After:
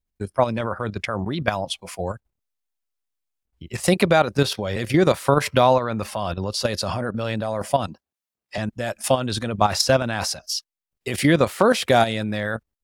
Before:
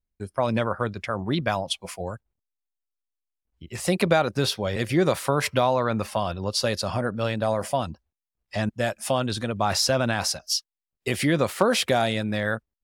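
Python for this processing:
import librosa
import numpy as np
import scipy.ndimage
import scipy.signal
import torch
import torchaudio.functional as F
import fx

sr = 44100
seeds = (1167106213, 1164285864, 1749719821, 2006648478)

y = fx.highpass(x, sr, hz=180.0, slope=12, at=(7.87, 8.58))
y = fx.level_steps(y, sr, step_db=11)
y = y * 10.0 ** (7.5 / 20.0)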